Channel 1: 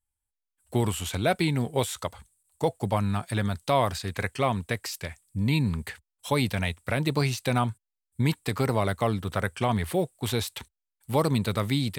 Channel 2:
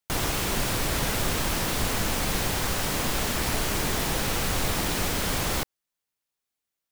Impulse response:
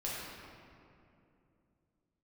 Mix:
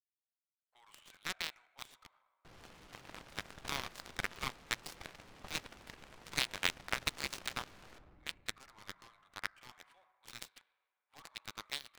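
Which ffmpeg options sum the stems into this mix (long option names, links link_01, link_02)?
-filter_complex "[0:a]highpass=frequency=1100:width=0.5412,highpass=frequency=1100:width=1.3066,volume=0dB,asplit=2[link_01][link_02];[link_02]volume=-9.5dB[link_03];[1:a]asoftclip=type=tanh:threshold=-23dB,adelay=2350,volume=-5dB,asplit=2[link_04][link_05];[link_05]volume=-5dB[link_06];[2:a]atrim=start_sample=2205[link_07];[link_03][link_06]amix=inputs=2:normalize=0[link_08];[link_08][link_07]afir=irnorm=-1:irlink=0[link_09];[link_01][link_04][link_09]amix=inputs=3:normalize=0,highshelf=frequency=2300:gain=6.5,adynamicsmooth=sensitivity=3.5:basefreq=1100,aeval=exprs='0.335*(cos(1*acos(clip(val(0)/0.335,-1,1)))-cos(1*PI/2))+0.0237*(cos(2*acos(clip(val(0)/0.335,-1,1)))-cos(2*PI/2))+0.106*(cos(3*acos(clip(val(0)/0.335,-1,1)))-cos(3*PI/2))+0.0106*(cos(4*acos(clip(val(0)/0.335,-1,1)))-cos(4*PI/2))+0.00596*(cos(7*acos(clip(val(0)/0.335,-1,1)))-cos(7*PI/2))':channel_layout=same"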